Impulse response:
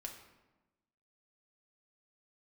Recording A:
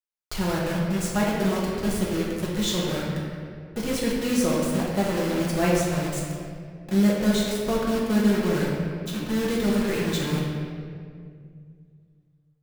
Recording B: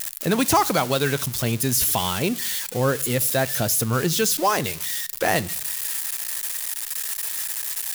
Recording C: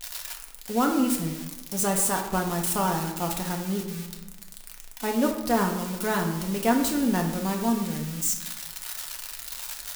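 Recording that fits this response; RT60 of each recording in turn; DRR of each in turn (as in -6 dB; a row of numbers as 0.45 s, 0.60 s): C; 2.2 s, 0.70 s, 1.1 s; -5.5 dB, 17.5 dB, 1.0 dB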